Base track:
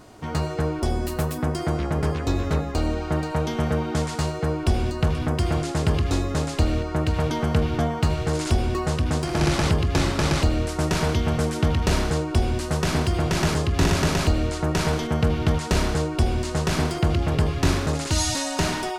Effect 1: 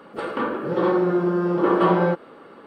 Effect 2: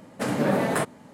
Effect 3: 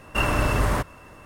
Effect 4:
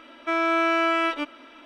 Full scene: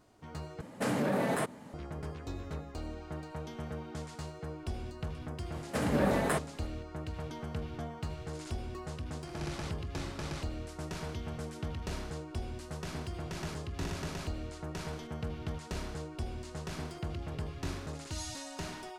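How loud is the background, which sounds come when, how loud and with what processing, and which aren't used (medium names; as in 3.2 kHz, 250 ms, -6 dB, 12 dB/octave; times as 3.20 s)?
base track -17 dB
0.61 s: replace with 2 -1 dB + peak limiter -21 dBFS
5.54 s: add 2 -5.5 dB + tape noise reduction on one side only encoder only
not used: 1, 3, 4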